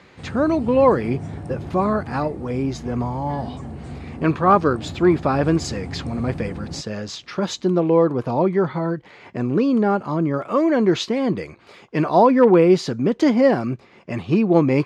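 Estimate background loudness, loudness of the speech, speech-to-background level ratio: −34.0 LKFS, −20.0 LKFS, 14.0 dB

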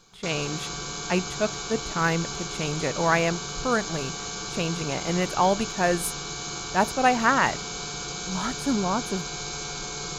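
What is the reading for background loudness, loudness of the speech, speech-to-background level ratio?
−32.0 LKFS, −26.5 LKFS, 5.5 dB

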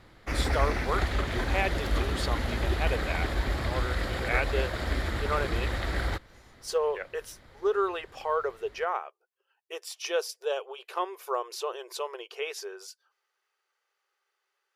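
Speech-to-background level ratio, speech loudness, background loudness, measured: −2.5 dB, −33.5 LKFS, −31.0 LKFS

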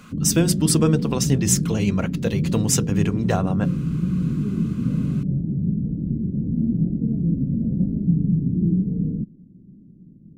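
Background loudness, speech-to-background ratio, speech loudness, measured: −23.5 LKFS, 1.0 dB, −22.5 LKFS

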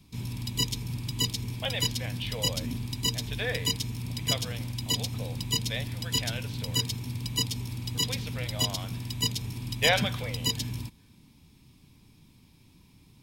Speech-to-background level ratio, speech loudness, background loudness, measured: −4.0 dB, −34.5 LKFS, −30.5 LKFS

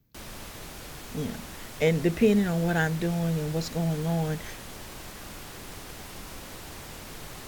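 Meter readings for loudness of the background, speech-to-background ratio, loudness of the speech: −41.0 LKFS, 14.0 dB, −27.0 LKFS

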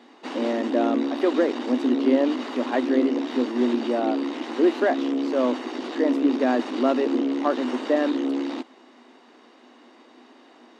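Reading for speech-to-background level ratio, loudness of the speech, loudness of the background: 3.5 dB, −25.0 LKFS, −28.5 LKFS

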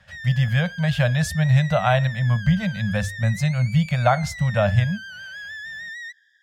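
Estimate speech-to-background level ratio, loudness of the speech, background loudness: 13.5 dB, −21.5 LKFS, −35.0 LKFS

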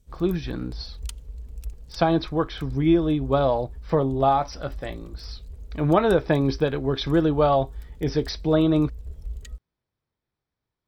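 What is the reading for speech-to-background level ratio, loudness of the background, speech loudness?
18.0 dB, −41.0 LKFS, −23.0 LKFS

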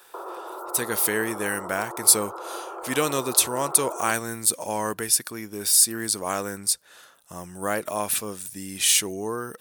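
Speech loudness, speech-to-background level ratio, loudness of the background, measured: −23.0 LKFS, 14.0 dB, −37.0 LKFS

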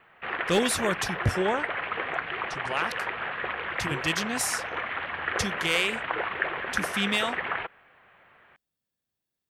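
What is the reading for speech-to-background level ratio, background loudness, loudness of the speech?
2.0 dB, −31.0 LKFS, −29.0 LKFS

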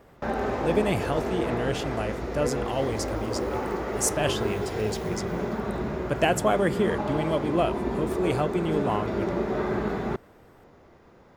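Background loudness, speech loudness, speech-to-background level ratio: −30.0 LKFS, −28.5 LKFS, 1.5 dB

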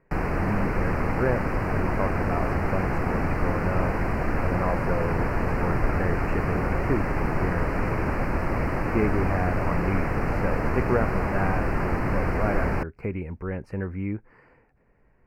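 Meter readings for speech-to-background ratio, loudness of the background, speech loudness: −3.5 dB, −27.5 LKFS, −31.0 LKFS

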